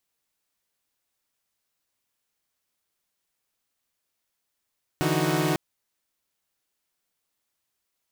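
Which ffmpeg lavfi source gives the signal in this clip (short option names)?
-f lavfi -i "aevalsrc='0.0562*((2*mod(146.83*t,1)-1)+(2*mod(164.81*t,1)-1)+(2*mod(311.13*t,1)-1)+(2*mod(369.99*t,1)-1))':d=0.55:s=44100"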